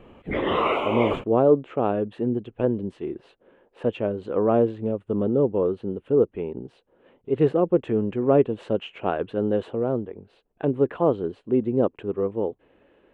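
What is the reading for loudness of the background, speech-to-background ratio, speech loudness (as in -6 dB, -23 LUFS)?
-25.5 LUFS, 1.0 dB, -24.5 LUFS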